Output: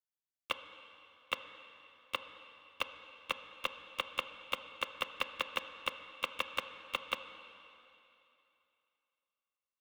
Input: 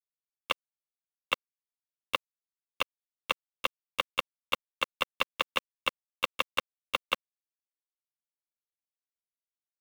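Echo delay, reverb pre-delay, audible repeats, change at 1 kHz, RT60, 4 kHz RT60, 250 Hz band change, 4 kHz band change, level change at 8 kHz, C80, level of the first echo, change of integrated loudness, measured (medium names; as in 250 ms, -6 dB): no echo, 8 ms, no echo, -6.0 dB, 2.9 s, 2.8 s, -6.0 dB, -6.0 dB, -6.5 dB, 10.5 dB, no echo, -6.0 dB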